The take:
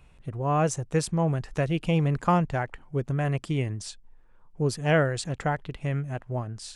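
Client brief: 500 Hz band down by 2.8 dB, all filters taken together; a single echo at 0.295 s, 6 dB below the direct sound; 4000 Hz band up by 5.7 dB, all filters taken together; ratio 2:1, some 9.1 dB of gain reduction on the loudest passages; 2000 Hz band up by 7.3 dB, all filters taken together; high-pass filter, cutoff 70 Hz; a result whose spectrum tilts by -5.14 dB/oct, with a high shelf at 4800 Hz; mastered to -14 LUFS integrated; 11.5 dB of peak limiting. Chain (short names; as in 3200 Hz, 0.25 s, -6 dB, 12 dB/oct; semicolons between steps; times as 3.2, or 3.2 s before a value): HPF 70 Hz; bell 500 Hz -4 dB; bell 2000 Hz +9 dB; bell 4000 Hz +6.5 dB; high shelf 4800 Hz -4 dB; compressor 2:1, threshold -33 dBFS; limiter -27 dBFS; echo 0.295 s -6 dB; gain +22 dB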